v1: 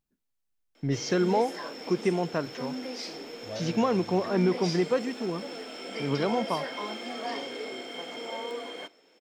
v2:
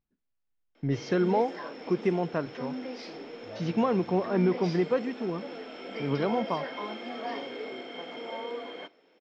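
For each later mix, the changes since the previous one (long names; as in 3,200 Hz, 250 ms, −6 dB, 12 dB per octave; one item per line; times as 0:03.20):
second voice −5.5 dB
master: add high-frequency loss of the air 200 metres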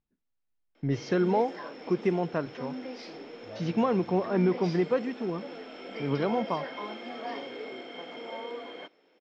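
background: send off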